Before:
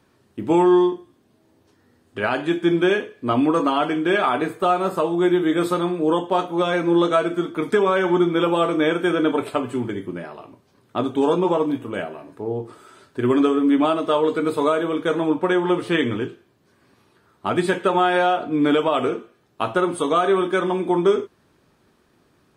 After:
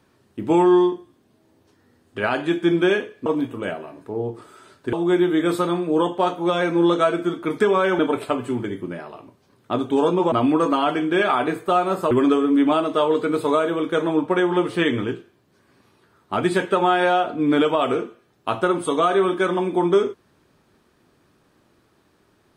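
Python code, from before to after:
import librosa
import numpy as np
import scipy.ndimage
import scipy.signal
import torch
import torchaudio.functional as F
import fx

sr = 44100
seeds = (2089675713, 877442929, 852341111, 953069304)

y = fx.edit(x, sr, fx.swap(start_s=3.26, length_s=1.79, other_s=11.57, other_length_s=1.67),
    fx.cut(start_s=8.11, length_s=1.13), tone=tone)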